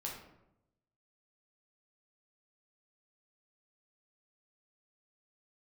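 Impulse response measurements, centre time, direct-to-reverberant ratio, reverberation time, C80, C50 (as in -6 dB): 39 ms, -2.5 dB, 0.85 s, 7.0 dB, 3.5 dB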